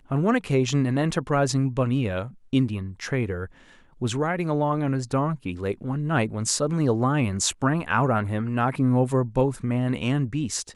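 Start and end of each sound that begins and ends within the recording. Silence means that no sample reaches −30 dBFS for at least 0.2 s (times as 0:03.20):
0:02.53–0:03.45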